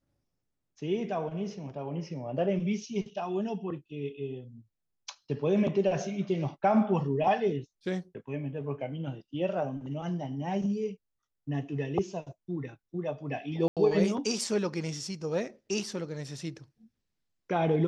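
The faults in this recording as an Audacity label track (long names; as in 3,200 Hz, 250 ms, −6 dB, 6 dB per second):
13.680000	13.770000	drop-out 87 ms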